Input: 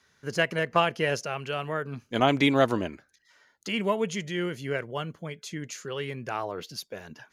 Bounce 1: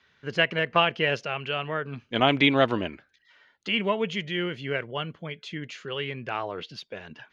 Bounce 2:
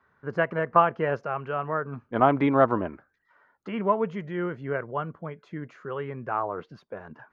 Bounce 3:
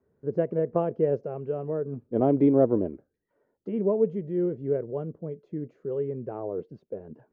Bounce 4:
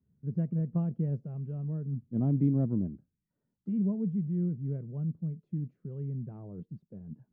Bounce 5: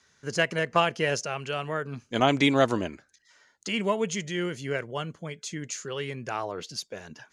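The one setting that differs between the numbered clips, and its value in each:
synth low-pass, frequency: 3100, 1200, 450, 180, 7800 Hz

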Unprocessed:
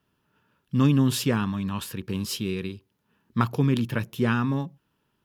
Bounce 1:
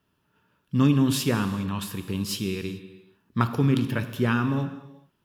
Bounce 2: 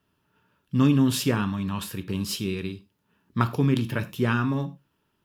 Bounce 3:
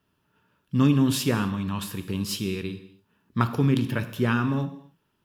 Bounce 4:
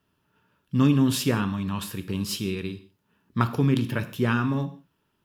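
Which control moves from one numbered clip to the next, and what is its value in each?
non-linear reverb, gate: 0.46, 0.13, 0.3, 0.2 s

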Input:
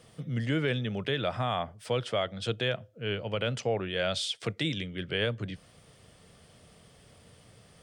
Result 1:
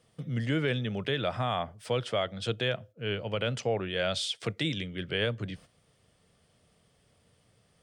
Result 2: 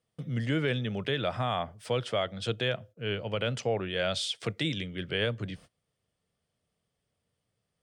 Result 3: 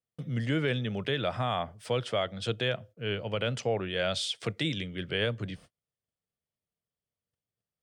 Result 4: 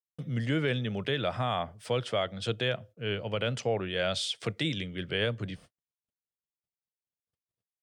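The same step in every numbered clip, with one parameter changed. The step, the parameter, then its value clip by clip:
gate, range: -10, -25, -39, -60 dB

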